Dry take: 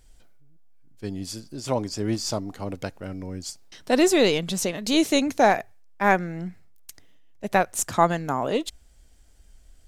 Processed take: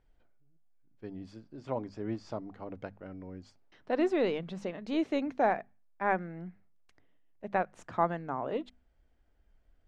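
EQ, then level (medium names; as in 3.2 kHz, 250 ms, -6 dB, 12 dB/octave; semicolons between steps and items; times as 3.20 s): low-pass 1.9 kHz 12 dB/octave; bass shelf 110 Hz -5.5 dB; hum notches 50/100/150/200/250 Hz; -8.5 dB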